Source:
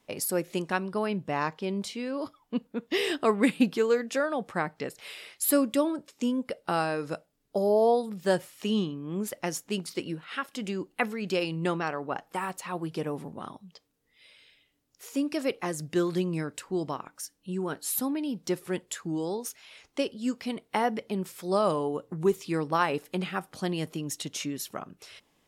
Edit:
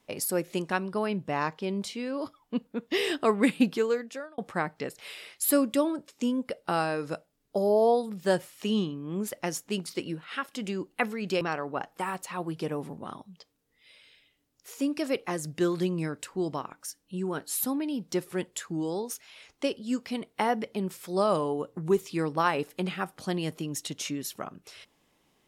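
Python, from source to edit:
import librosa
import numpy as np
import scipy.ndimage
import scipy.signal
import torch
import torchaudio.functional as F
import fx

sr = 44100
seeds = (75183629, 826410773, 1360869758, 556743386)

y = fx.edit(x, sr, fx.fade_out_span(start_s=3.74, length_s=0.64),
    fx.cut(start_s=11.41, length_s=0.35), tone=tone)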